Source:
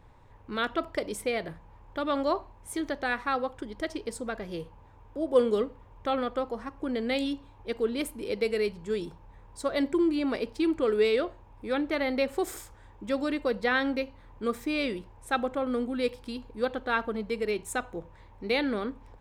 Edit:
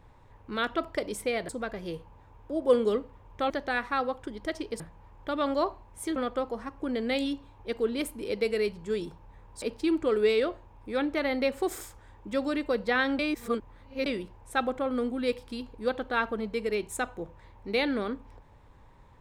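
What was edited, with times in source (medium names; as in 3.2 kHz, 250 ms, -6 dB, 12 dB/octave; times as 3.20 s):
1.49–2.85 s: swap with 4.15–6.16 s
9.62–10.38 s: delete
13.95–14.82 s: reverse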